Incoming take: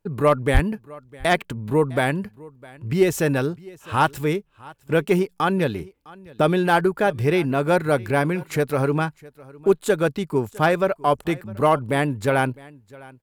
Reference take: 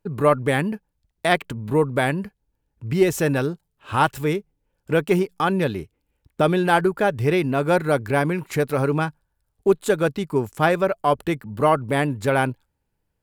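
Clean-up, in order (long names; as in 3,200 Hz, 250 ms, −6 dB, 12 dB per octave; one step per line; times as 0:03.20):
clipped peaks rebuilt −7.5 dBFS
high-pass at the plosives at 0:00.53
echo removal 657 ms −22.5 dB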